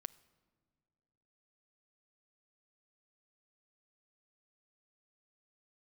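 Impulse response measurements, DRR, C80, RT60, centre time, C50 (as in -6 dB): 14.0 dB, 22.0 dB, not exponential, 3 ms, 20.0 dB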